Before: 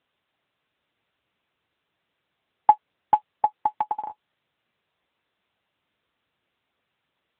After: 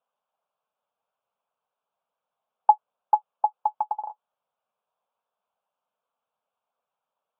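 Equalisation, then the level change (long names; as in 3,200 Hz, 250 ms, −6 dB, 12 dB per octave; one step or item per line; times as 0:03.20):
band-pass filter 360–2,000 Hz
high-frequency loss of the air 130 metres
phaser with its sweep stopped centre 800 Hz, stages 4
0.0 dB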